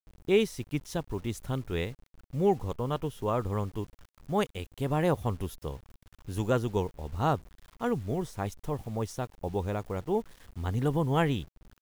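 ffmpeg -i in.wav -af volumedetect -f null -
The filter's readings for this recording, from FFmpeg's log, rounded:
mean_volume: -31.2 dB
max_volume: -11.6 dB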